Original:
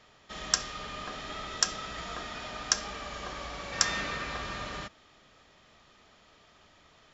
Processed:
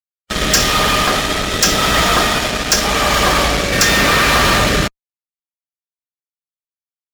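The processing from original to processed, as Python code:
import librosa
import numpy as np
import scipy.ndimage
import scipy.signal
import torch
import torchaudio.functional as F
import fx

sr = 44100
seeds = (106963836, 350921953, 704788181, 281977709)

y = fx.rotary(x, sr, hz=0.85)
y = fx.fuzz(y, sr, gain_db=41.0, gate_db=-48.0)
y = fx.hpss(y, sr, part='harmonic', gain_db=-4)
y = y * 10.0 ** (6.5 / 20.0)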